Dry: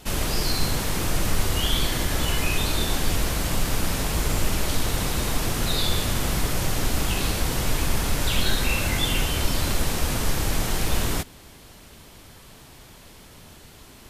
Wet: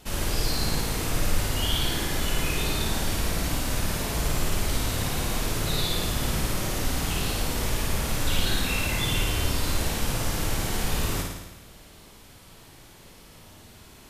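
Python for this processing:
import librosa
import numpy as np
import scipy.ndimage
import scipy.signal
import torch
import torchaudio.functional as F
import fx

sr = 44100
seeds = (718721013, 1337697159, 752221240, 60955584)

y = fx.room_flutter(x, sr, wall_m=9.4, rt60_s=1.0)
y = y * librosa.db_to_amplitude(-5.0)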